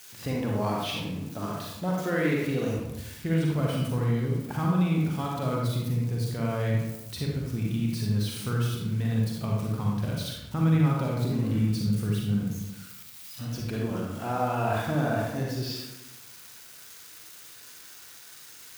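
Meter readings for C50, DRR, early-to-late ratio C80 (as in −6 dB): −0.5 dB, −2.5 dB, 3.0 dB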